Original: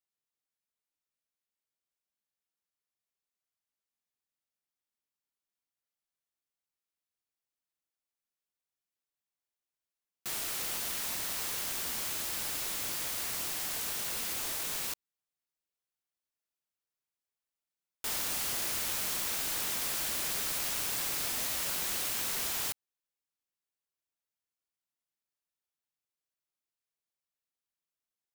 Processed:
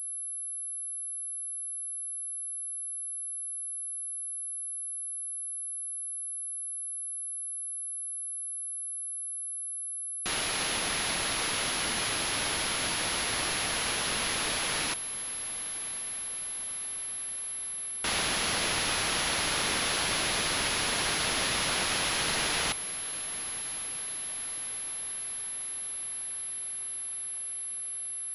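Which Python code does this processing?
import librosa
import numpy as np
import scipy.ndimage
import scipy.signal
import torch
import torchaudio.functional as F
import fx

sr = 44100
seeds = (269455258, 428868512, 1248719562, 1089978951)

y = fx.echo_diffused(x, sr, ms=1116, feedback_pct=67, wet_db=-15.5)
y = fx.pwm(y, sr, carrier_hz=11000.0)
y = F.gain(torch.from_numpy(y), 8.0).numpy()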